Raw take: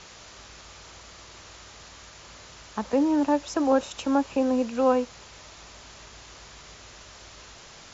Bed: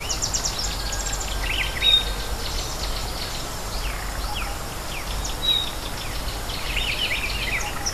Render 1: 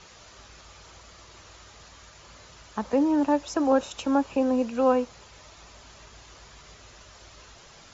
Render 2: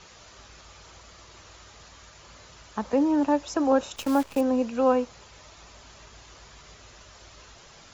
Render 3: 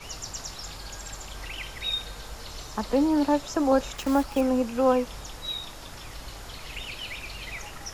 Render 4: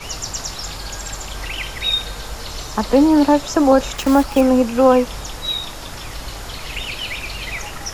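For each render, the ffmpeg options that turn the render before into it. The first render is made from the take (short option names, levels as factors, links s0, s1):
-af "afftdn=nr=6:nf=-48"
-filter_complex "[0:a]asettb=1/sr,asplit=3[s0][s1][s2];[s0]atrim=end=3.964[s3];[s1]atrim=start=3.96:end=4.41,asetpts=PTS-STARTPTS,afade=t=in:d=0.004:c=qsin,afade=t=out:st=0.446:d=0.004:c=qsin,acrusher=bits=7:dc=4:mix=0:aa=0.000001[s4];[s2]atrim=start=4.406[s5];[s3][s4]acrossfade=d=0.004:c1=hsin:c2=qsin[s6];[s6][s5]acrossfade=d=0.004:c1=qsin:c2=hsin"
-filter_complex "[1:a]volume=0.237[s0];[0:a][s0]amix=inputs=2:normalize=0"
-af "volume=3.16,alimiter=limit=0.708:level=0:latency=1"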